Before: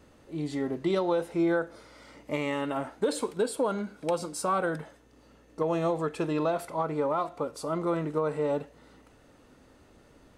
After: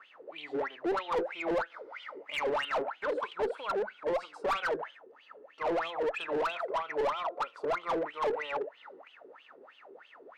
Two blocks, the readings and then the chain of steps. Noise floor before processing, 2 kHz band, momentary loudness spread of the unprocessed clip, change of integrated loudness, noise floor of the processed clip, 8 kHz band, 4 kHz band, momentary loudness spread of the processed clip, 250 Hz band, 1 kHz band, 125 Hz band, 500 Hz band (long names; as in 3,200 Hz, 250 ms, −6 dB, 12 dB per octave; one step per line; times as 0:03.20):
−59 dBFS, +2.5 dB, 8 LU, −3.5 dB, −59 dBFS, below −15 dB, +2.0 dB, 13 LU, −10.5 dB, −0.5 dB, −19.0 dB, −3.5 dB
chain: LFO wah 3.1 Hz 380–3,200 Hz, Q 14
asymmetric clip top −44.5 dBFS
mid-hump overdrive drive 25 dB, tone 2,300 Hz, clips at −27.5 dBFS
level +6 dB